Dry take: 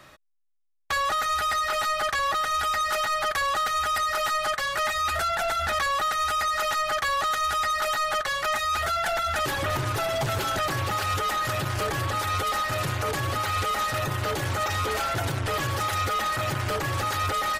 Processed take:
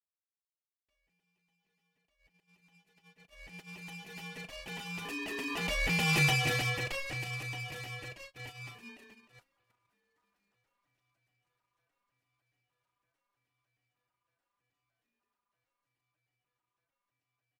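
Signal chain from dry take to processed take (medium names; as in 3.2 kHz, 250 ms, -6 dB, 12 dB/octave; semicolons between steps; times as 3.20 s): Doppler pass-by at 6.21 s, 7 m/s, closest 1.6 m; doubling 36 ms -10.5 dB; ring modulator 1.1 kHz; gate -48 dBFS, range -29 dB; trim +2.5 dB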